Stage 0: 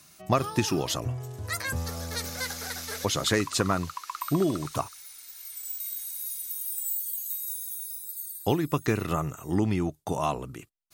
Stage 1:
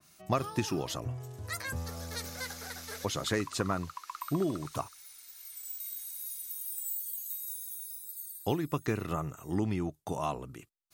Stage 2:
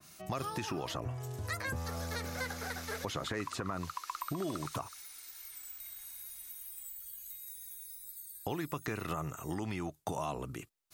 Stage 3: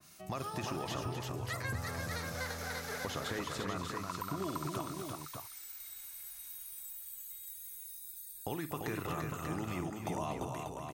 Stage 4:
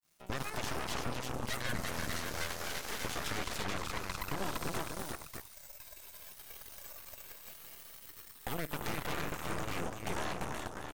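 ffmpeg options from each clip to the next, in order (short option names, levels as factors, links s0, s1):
-af "adynamicequalizer=threshold=0.00891:dfrequency=2200:dqfactor=0.7:tfrequency=2200:tqfactor=0.7:attack=5:release=100:ratio=0.375:range=2:mode=cutabove:tftype=highshelf,volume=0.531"
-filter_complex "[0:a]alimiter=level_in=1.19:limit=0.0631:level=0:latency=1:release=103,volume=0.841,acrossover=split=660|2700[s0][s1][s2];[s0]acompressor=threshold=0.00794:ratio=4[s3];[s1]acompressor=threshold=0.00794:ratio=4[s4];[s2]acompressor=threshold=0.00251:ratio=4[s5];[s3][s4][s5]amix=inputs=3:normalize=0,volume=1.78"
-af "aecho=1:1:53|245|342|589:0.2|0.316|0.596|0.501,volume=0.75"
-af "aeval=exprs='sgn(val(0))*max(abs(val(0))-0.0015,0)':c=same,aeval=exprs='0.0708*(cos(1*acos(clip(val(0)/0.0708,-1,1)))-cos(1*PI/2))+0.0316*(cos(8*acos(clip(val(0)/0.0708,-1,1)))-cos(8*PI/2))':c=same,volume=0.596"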